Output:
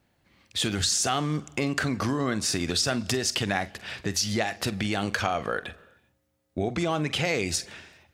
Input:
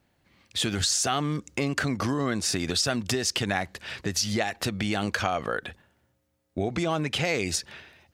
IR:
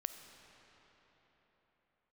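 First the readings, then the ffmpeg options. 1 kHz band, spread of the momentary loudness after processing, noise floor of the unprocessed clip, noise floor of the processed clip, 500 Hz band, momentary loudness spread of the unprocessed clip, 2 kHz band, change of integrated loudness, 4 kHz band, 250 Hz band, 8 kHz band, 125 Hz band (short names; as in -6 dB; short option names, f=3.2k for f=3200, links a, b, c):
0.0 dB, 9 LU, -72 dBFS, -71 dBFS, 0.0 dB, 9 LU, 0.0 dB, 0.0 dB, 0.0 dB, 0.0 dB, 0.0 dB, 0.0 dB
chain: -filter_complex "[0:a]asplit=2[a][b];[1:a]atrim=start_sample=2205,afade=t=out:st=0.42:d=0.01,atrim=end_sample=18963,adelay=46[c];[b][c]afir=irnorm=-1:irlink=0,volume=-12.5dB[d];[a][d]amix=inputs=2:normalize=0"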